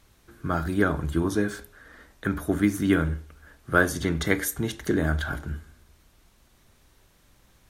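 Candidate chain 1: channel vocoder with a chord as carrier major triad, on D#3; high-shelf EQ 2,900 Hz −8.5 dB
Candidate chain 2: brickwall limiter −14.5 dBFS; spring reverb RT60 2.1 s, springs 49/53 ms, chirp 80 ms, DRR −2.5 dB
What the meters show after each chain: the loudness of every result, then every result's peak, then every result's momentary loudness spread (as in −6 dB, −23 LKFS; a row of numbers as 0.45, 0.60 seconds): −28.0, −25.0 LKFS; −10.0, −8.5 dBFS; 14, 11 LU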